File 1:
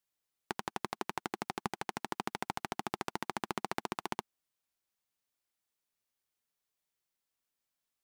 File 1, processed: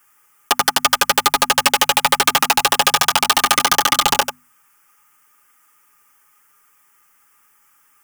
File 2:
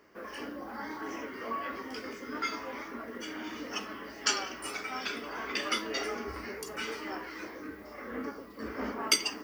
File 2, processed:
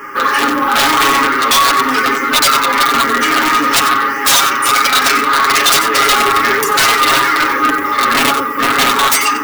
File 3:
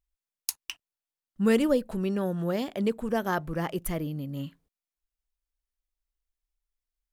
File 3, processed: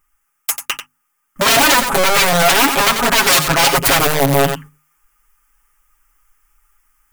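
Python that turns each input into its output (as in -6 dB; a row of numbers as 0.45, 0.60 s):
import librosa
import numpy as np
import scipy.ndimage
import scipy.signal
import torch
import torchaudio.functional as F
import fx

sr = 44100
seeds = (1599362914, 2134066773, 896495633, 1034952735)

y = fx.block_float(x, sr, bits=7)
y = fx.peak_eq(y, sr, hz=71.0, db=-6.0, octaves=0.86)
y = fx.fixed_phaser(y, sr, hz=1700.0, stages=4)
y = fx.small_body(y, sr, hz=(850.0, 1200.0), ring_ms=30, db=16)
y = fx.rider(y, sr, range_db=3, speed_s=0.5)
y = (np.mod(10.0 ** (28.0 / 20.0) * y + 1.0, 2.0) - 1.0) / 10.0 ** (28.0 / 20.0)
y = y + 10.0 ** (-13.0 / 20.0) * np.pad(y, (int(92 * sr / 1000.0), 0))[:len(y)]
y = 10.0 ** (-36.5 / 20.0) * np.tanh(y / 10.0 ** (-36.5 / 20.0))
y = fx.low_shelf(y, sr, hz=380.0, db=-7.5)
y = fx.hum_notches(y, sr, base_hz=50, count=5)
y = y + 0.73 * np.pad(y, (int(7.3 * sr / 1000.0), 0))[:len(y)]
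y = librosa.util.normalize(y) * 10.0 ** (-1.5 / 20.0)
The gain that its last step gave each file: +29.5, +27.5, +26.5 dB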